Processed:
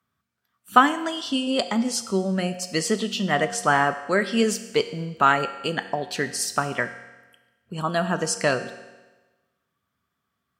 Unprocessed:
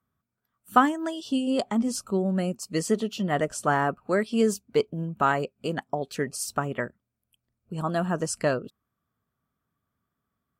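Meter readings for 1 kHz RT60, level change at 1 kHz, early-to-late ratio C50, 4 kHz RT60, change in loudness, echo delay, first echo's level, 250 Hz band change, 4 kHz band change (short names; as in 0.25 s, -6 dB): 1.2 s, +4.5 dB, 12.0 dB, 1.1 s, +3.5 dB, none, none, +1.0 dB, +9.5 dB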